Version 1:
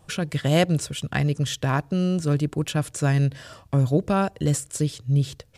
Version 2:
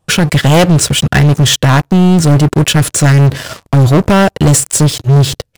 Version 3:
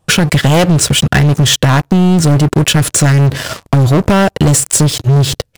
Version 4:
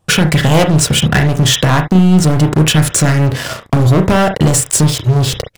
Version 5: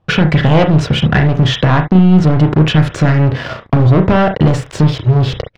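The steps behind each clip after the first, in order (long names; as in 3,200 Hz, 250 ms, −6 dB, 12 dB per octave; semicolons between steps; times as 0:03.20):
leveller curve on the samples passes 5; level +2.5 dB
downward compressor, threshold −11 dBFS, peak gain reduction 5.5 dB; level +3.5 dB
convolution reverb, pre-delay 32 ms, DRR 5.5 dB; level −1.5 dB
high-frequency loss of the air 260 metres; level +1 dB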